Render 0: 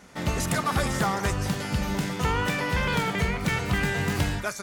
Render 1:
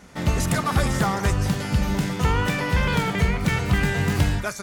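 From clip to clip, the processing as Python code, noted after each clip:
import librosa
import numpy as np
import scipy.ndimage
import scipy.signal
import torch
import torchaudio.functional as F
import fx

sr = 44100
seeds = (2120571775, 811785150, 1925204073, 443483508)

y = fx.low_shelf(x, sr, hz=170.0, db=6.5)
y = y * 10.0 ** (1.5 / 20.0)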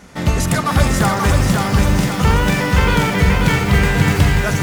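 y = fx.echo_crushed(x, sr, ms=535, feedback_pct=55, bits=7, wet_db=-3)
y = y * 10.0 ** (5.5 / 20.0)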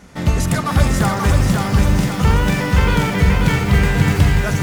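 y = fx.low_shelf(x, sr, hz=230.0, db=4.0)
y = y * 10.0 ** (-3.0 / 20.0)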